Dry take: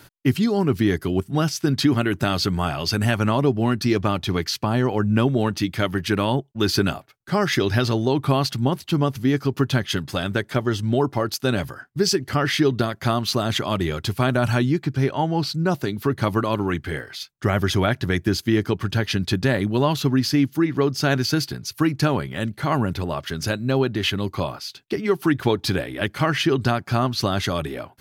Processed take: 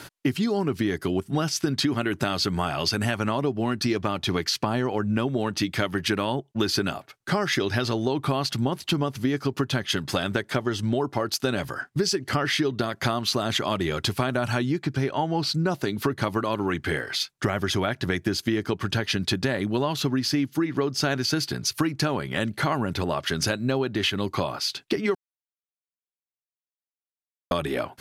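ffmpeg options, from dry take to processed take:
ffmpeg -i in.wav -filter_complex "[0:a]asplit=3[link_01][link_02][link_03];[link_01]atrim=end=25.15,asetpts=PTS-STARTPTS,afade=type=out:start_time=25.146:duration=0.004:curve=hsin[link_04];[link_02]atrim=start=25.15:end=27.51,asetpts=PTS-STARTPTS,volume=0[link_05];[link_03]atrim=start=27.51,asetpts=PTS-STARTPTS,afade=type=in:duration=0.004:curve=hsin[link_06];[link_04][link_05][link_06]concat=n=3:v=0:a=1,lowpass=12000,lowshelf=frequency=130:gain=-9.5,acompressor=threshold=-30dB:ratio=6,volume=8dB" out.wav

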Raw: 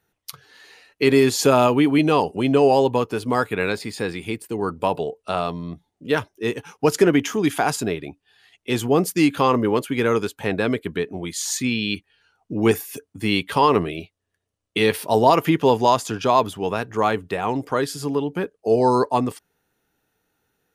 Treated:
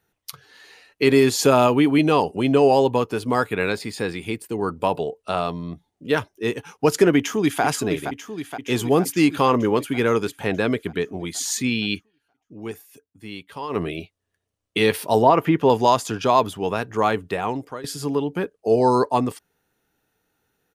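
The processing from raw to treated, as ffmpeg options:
ffmpeg -i in.wav -filter_complex "[0:a]asplit=2[link_01][link_02];[link_02]afade=type=in:start_time=7.17:duration=0.01,afade=type=out:start_time=7.63:duration=0.01,aecho=0:1:470|940|1410|1880|2350|2820|3290|3760|4230|4700|5170:0.398107|0.278675|0.195073|0.136551|0.0955855|0.0669099|0.0468369|0.0327858|0.0229501|0.0160651|0.0112455[link_03];[link_01][link_03]amix=inputs=2:normalize=0,asettb=1/sr,asplit=3[link_04][link_05][link_06];[link_04]atrim=end=15.224[link_07];[link_05]atrim=start=15.22:end=15.7,asetpts=PTS-STARTPTS,afade=type=in:duration=0.004:curve=qsin,afade=type=out:start_time=0.476:duration=0.004:curve=qsin,acrossover=split=2700[link_08][link_09];[link_09]acompressor=threshold=-47dB:ratio=4:attack=1:release=60[link_10];[link_08][link_10]amix=inputs=2:normalize=0[link_11];[link_06]atrim=start=15.696[link_12];[link_07][link_11]acrossfade=duration=0.004:curve1=hsin:curve2=qsin[link_13];[link_13][link_12]acrossfade=duration=0.004:curve1=qsin:curve2=hsin,asplit=4[link_14][link_15][link_16][link_17];[link_14]atrim=end=12.11,asetpts=PTS-STARTPTS,afade=type=out:start_time=11.94:duration=0.17:silence=0.177828[link_18];[link_15]atrim=start=12.11:end=13.69,asetpts=PTS-STARTPTS,volume=-15dB[link_19];[link_16]atrim=start=13.69:end=17.84,asetpts=PTS-STARTPTS,afade=type=in:duration=0.17:silence=0.177828,afade=type=out:start_time=3.7:duration=0.45:silence=0.112202[link_20];[link_17]atrim=start=17.84,asetpts=PTS-STARTPTS,afade=type=in:duration=0.004:curve=hsin:silence=0.112202[link_21];[link_18][link_19][link_20][link_21]concat=n=4:v=0:a=1" out.wav

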